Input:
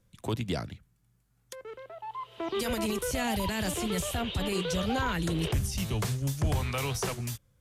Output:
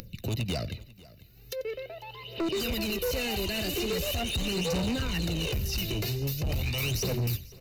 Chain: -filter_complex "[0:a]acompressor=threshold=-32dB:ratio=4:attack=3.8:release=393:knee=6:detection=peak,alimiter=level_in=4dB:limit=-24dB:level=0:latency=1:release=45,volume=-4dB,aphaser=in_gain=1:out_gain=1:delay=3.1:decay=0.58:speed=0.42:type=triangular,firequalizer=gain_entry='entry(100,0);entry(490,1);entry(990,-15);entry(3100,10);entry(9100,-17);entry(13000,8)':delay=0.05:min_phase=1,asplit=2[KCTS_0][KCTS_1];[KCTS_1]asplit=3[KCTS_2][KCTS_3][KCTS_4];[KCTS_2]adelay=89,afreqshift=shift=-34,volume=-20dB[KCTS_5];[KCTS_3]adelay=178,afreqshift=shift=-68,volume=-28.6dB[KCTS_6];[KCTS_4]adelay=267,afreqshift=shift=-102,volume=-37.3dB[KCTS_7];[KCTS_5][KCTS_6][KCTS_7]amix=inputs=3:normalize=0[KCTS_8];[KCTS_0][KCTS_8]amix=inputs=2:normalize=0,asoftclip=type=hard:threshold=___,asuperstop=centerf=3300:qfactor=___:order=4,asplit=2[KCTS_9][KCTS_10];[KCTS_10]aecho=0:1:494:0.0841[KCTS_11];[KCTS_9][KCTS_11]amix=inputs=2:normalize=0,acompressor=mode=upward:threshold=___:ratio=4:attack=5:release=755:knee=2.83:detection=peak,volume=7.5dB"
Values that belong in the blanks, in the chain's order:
-33.5dB, 4.9, -48dB